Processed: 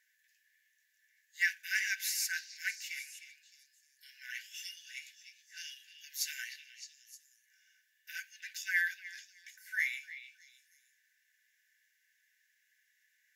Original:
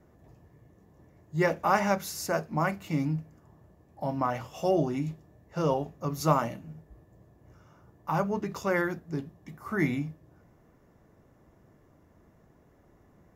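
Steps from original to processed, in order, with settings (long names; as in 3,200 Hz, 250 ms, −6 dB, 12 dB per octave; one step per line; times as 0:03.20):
linear-phase brick-wall high-pass 1,500 Hz
echo through a band-pass that steps 307 ms, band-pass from 3,200 Hz, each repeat 0.7 octaves, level −9 dB
level +3 dB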